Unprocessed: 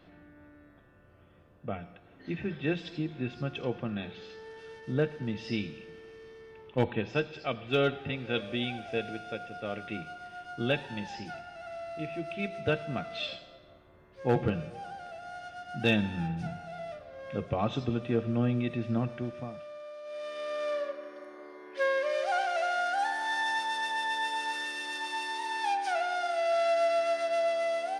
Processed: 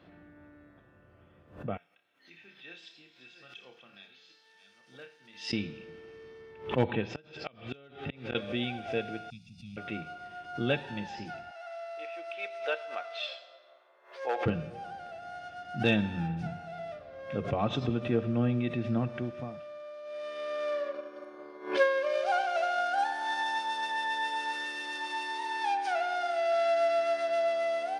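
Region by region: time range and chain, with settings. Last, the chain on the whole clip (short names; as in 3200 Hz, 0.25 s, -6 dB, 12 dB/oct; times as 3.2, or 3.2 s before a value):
1.77–5.53 reverse delay 0.638 s, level -10.5 dB + differentiator + flutter echo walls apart 5.2 m, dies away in 0.25 s
7.03–8.35 high shelf 2500 Hz +4 dB + flipped gate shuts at -22 dBFS, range -29 dB
9.3–9.77 inverse Chebyshev band-stop 360–1700 Hz + bell 3100 Hz -15 dB 0.22 oct
11.51–14.46 HPF 540 Hz 24 dB/oct + bell 5400 Hz +2.5 dB 0.36 oct
20.93–23.89 transient shaper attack +7 dB, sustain -2 dB + notch 1900 Hz, Q 6.6
whole clip: HPF 58 Hz; high shelf 7600 Hz -10 dB; backwards sustainer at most 130 dB/s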